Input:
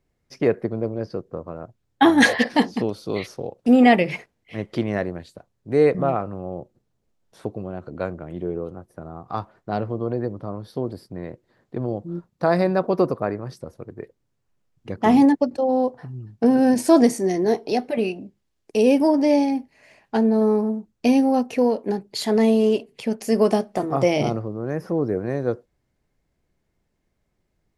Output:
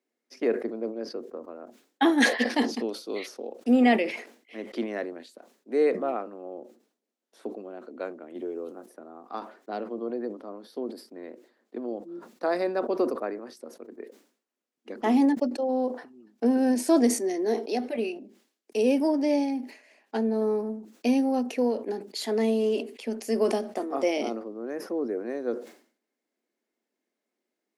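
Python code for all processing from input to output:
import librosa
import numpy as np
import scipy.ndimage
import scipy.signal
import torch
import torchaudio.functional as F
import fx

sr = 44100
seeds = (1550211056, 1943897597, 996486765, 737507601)

y = fx.chain(x, sr, fx.high_shelf(hz=5400.0, db=12.0),
    fx.band_squash(depth_pct=70), at=(8.35, 8.86))
y = scipy.signal.sosfilt(scipy.signal.cheby1(5, 1.0, 230.0, 'highpass', fs=sr, output='sos'), y)
y = fx.peak_eq(y, sr, hz=1000.0, db=-2.5, octaves=0.77)
y = fx.sustainer(y, sr, db_per_s=120.0)
y = F.gain(torch.from_numpy(y), -5.5).numpy()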